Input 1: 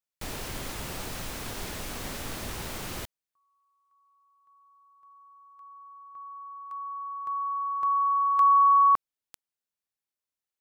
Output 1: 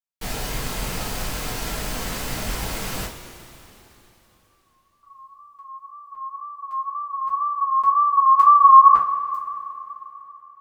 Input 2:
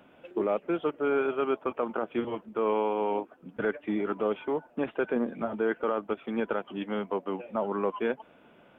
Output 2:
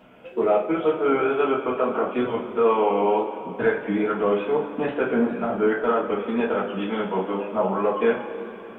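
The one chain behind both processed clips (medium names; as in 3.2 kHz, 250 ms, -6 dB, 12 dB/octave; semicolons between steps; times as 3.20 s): gate with hold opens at -52 dBFS, hold 196 ms, range -14 dB; wow and flutter 79 cents; two-slope reverb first 0.28 s, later 3.4 s, from -18 dB, DRR -7 dB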